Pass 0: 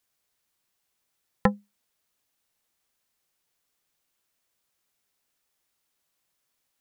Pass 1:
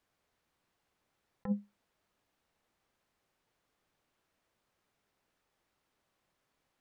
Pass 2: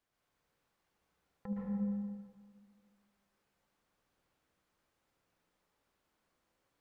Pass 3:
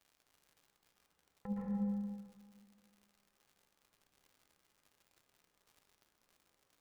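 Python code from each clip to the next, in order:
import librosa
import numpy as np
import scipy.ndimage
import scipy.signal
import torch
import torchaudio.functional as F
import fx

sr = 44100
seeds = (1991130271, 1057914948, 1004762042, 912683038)

y1 = fx.lowpass(x, sr, hz=1200.0, slope=6)
y1 = fx.over_compress(y1, sr, threshold_db=-33.0, ratio=-1.0)
y1 = F.gain(torch.from_numpy(y1), -1.0).numpy()
y2 = fx.echo_wet_lowpass(y1, sr, ms=74, feedback_pct=68, hz=700.0, wet_db=-5)
y2 = fx.rev_plate(y2, sr, seeds[0], rt60_s=1.7, hf_ratio=0.75, predelay_ms=105, drr_db=-4.0)
y2 = F.gain(torch.from_numpy(y2), -6.0).numpy()
y3 = fx.dmg_crackle(y2, sr, seeds[1], per_s=130.0, level_db=-54.0)
y3 = fx.comb_fb(y3, sr, f0_hz=410.0, decay_s=0.71, harmonics='all', damping=0.0, mix_pct=70)
y3 = F.gain(torch.from_numpy(y3), 9.5).numpy()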